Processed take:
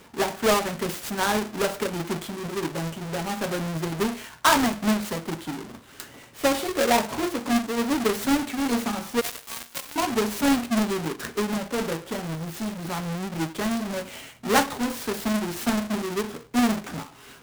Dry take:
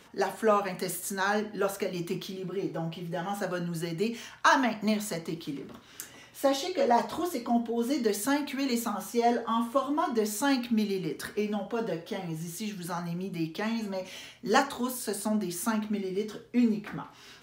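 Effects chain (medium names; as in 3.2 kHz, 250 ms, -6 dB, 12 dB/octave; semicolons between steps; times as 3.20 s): square wave that keeps the level; 9.21–9.96 s: differentiator; delay time shaken by noise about 4.4 kHz, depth 0.034 ms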